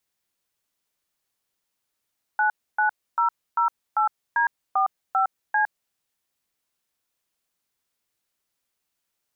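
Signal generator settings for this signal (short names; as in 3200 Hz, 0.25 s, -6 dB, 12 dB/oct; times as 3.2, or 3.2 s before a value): DTMF "99008D45C", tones 0.11 s, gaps 0.284 s, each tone -20.5 dBFS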